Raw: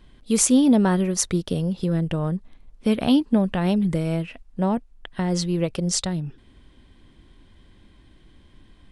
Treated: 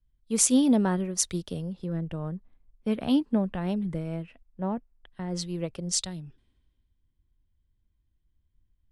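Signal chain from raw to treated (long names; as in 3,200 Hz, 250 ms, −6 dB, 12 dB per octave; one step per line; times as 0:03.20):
multiband upward and downward expander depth 70%
level −8.5 dB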